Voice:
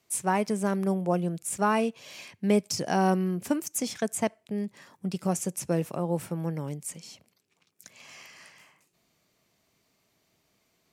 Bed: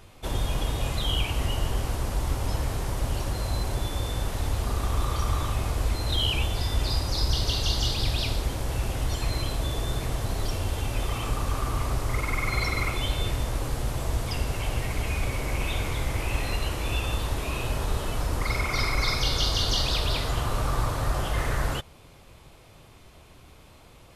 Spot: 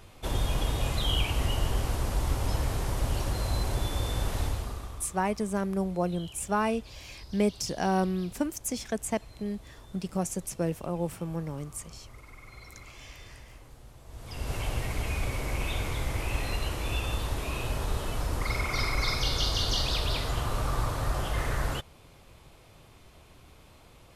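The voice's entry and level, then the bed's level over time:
4.90 s, -2.5 dB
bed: 4.42 s -1 dB
5.21 s -22 dB
14.04 s -22 dB
14.52 s -3 dB

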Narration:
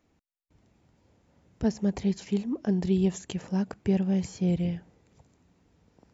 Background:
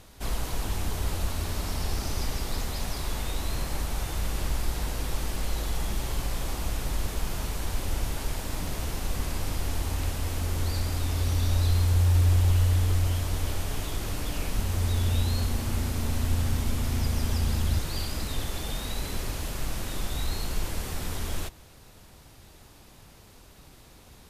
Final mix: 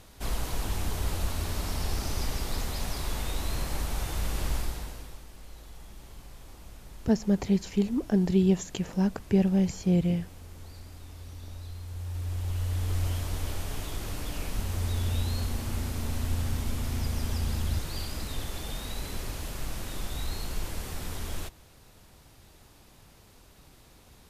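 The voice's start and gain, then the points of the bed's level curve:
5.45 s, +2.0 dB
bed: 4.57 s -1 dB
5.25 s -17.5 dB
11.82 s -17.5 dB
13.04 s -3.5 dB

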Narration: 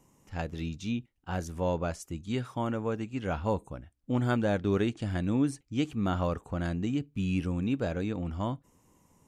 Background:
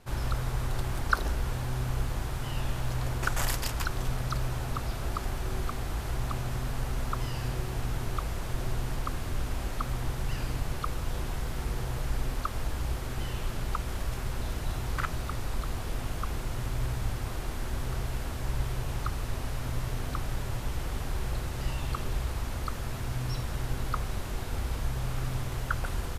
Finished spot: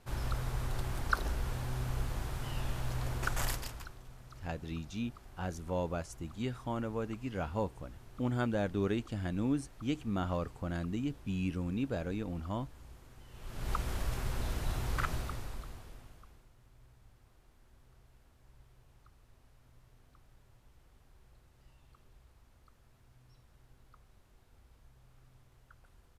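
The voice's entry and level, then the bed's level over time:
4.10 s, -5.0 dB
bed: 3.49 s -5 dB
4.02 s -21.5 dB
13.27 s -21.5 dB
13.71 s -2.5 dB
15.14 s -2.5 dB
16.54 s -30 dB

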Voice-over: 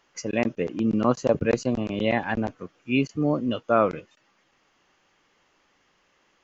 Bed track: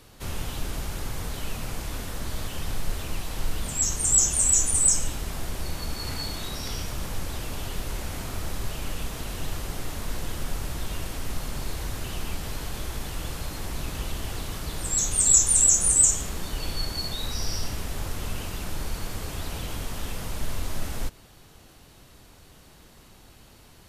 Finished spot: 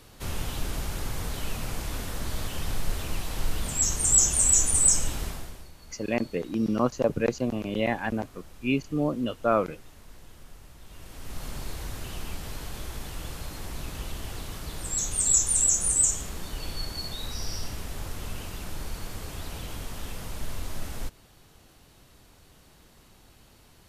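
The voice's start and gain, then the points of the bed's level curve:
5.75 s, -3.0 dB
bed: 5.25 s 0 dB
5.72 s -18 dB
10.80 s -18 dB
11.45 s -4 dB

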